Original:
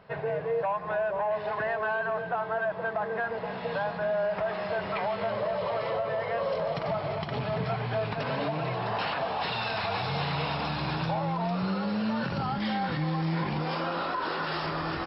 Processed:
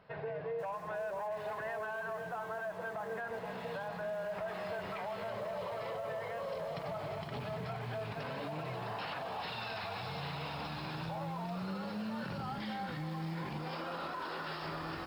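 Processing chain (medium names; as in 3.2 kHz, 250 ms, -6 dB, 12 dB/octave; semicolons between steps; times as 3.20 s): de-hum 68.05 Hz, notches 17; peak limiter -25.5 dBFS, peak gain reduction 6.5 dB; bit-crushed delay 490 ms, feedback 35%, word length 7-bit, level -14 dB; trim -6.5 dB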